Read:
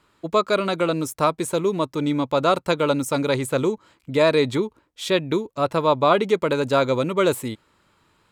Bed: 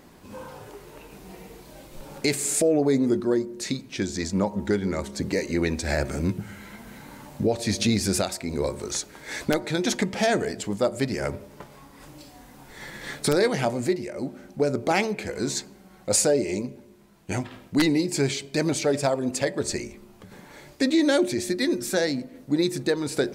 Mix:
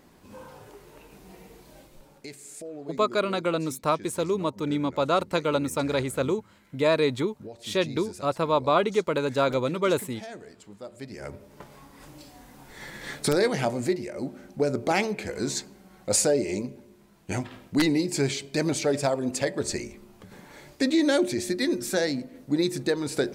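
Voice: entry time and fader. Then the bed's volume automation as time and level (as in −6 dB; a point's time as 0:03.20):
2.65 s, −4.5 dB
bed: 0:01.79 −5 dB
0:02.29 −18.5 dB
0:10.81 −18.5 dB
0:11.68 −1.5 dB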